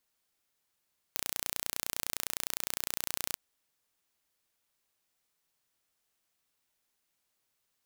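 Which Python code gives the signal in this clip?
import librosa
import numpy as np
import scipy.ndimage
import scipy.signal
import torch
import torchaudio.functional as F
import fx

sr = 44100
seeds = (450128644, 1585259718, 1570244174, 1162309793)

y = 10.0 ** (-5.5 / 20.0) * (np.mod(np.arange(round(2.21 * sr)), round(sr / 29.8)) == 0)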